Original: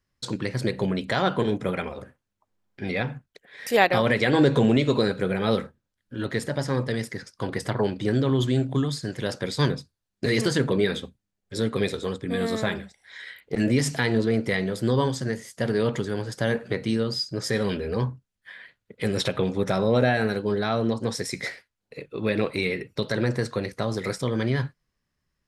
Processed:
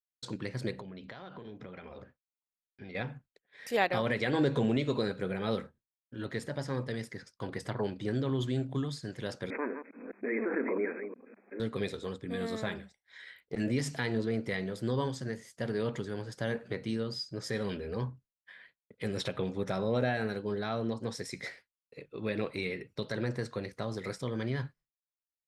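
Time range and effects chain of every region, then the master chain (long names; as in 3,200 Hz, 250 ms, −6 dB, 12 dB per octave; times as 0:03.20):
0:00.80–0:02.95: low-pass filter 5,600 Hz 24 dB per octave + downward compressor 16 to 1, threshold −32 dBFS
0:09.50–0:11.60: delay that plays each chunk backwards 205 ms, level −8.5 dB + linear-phase brick-wall band-pass 210–2,600 Hz + background raised ahead of every attack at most 52 dB per second
whole clip: downward expander −44 dBFS; high-shelf EQ 9,700 Hz −6 dB; level −9 dB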